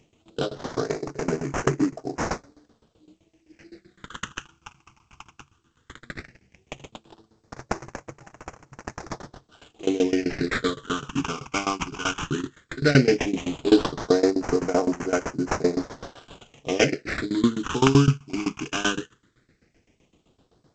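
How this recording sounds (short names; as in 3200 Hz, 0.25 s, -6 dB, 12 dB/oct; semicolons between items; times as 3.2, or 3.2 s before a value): aliases and images of a low sample rate 4500 Hz, jitter 20%; tremolo saw down 7.8 Hz, depth 95%; phasing stages 8, 0.15 Hz, lowest notch 530–3600 Hz; G.722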